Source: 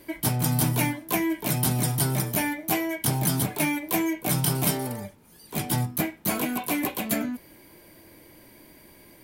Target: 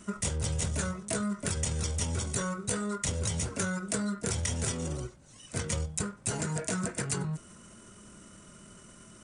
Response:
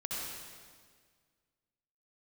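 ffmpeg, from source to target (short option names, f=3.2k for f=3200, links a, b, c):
-af "asetrate=27781,aresample=44100,atempo=1.5874,acompressor=threshold=-29dB:ratio=4"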